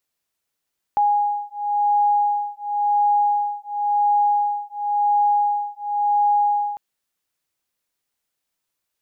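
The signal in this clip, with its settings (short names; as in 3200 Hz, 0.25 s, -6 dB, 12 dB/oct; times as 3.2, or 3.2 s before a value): beating tones 824 Hz, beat 0.94 Hz, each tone -20 dBFS 5.80 s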